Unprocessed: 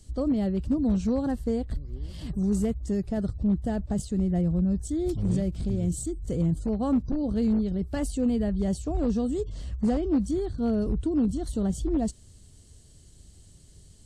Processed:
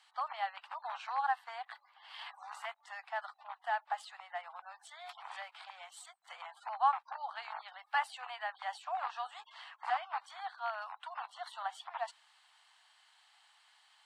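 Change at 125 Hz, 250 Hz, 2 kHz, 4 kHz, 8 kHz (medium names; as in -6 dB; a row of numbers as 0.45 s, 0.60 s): under -40 dB, under -40 dB, no reading, +0.5 dB, -17.0 dB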